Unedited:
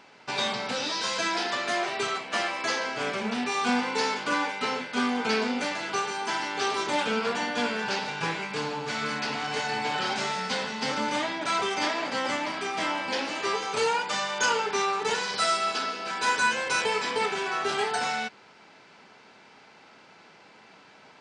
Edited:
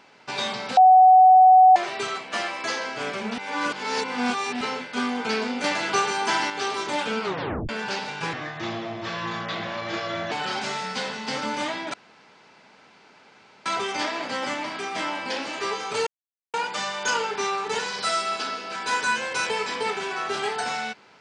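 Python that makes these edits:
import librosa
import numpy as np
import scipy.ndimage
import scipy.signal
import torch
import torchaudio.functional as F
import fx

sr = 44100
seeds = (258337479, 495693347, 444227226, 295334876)

y = fx.edit(x, sr, fx.bleep(start_s=0.77, length_s=0.99, hz=747.0, db=-9.0),
    fx.reverse_span(start_s=3.38, length_s=1.23),
    fx.clip_gain(start_s=5.64, length_s=0.86, db=6.0),
    fx.tape_stop(start_s=7.22, length_s=0.47),
    fx.speed_span(start_s=8.33, length_s=1.53, speed=0.77),
    fx.insert_room_tone(at_s=11.48, length_s=1.72),
    fx.insert_silence(at_s=13.89, length_s=0.47), tone=tone)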